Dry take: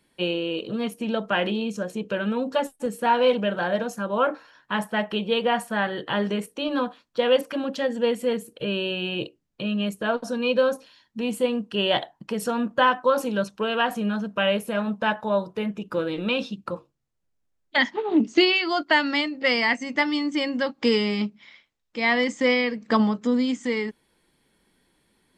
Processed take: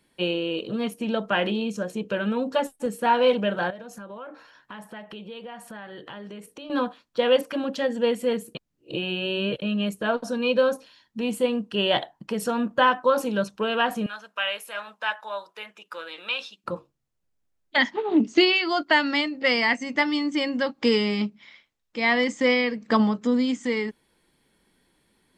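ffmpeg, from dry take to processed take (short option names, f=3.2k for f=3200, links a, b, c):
-filter_complex "[0:a]asettb=1/sr,asplit=3[a][b][c];[a]atrim=end=3.704[d];[b]atrim=start=3.7:end=6.7,asetpts=PTS-STARTPTS,afade=t=in:d=0.004:c=qsin,afade=t=out:st=2.996:d=0.004:c=qsin,acompressor=threshold=-38dB:ratio=5:attack=3.2:release=140:knee=1:detection=peak[e];[c]atrim=start=6.696[f];[d][e]acrossfade=d=0.004:c1=hsin:c2=qsin[g];[g][f]acrossfade=d=0.004:c1=qsin:c2=hsin,asettb=1/sr,asplit=3[h][i][j];[h]atrim=end=14.064[k];[i]atrim=start=14.06:end=16.64,asetpts=PTS-STARTPTS,afade=t=in:d=0.004:c=qsin,afade=t=out:st=2.576:d=0.004:c=qsin,highpass=1.1k[l];[j]atrim=start=16.636[m];[k][l]acrossfade=d=0.004:c1=hsin:c2=qsin[n];[n][m]acrossfade=d=0.004:c1=qsin:c2=hsin,asplit=3[o][p][q];[o]atrim=end=8.552[r];[p]atrim=start=8.548:end=9.622,asetpts=PTS-STARTPTS,areverse[s];[q]atrim=start=9.618[t];[r][s]acrossfade=d=0.004:c1=hsin:c2=hsin[u];[u][t]acrossfade=d=0.004:c1=hsin:c2=hsin"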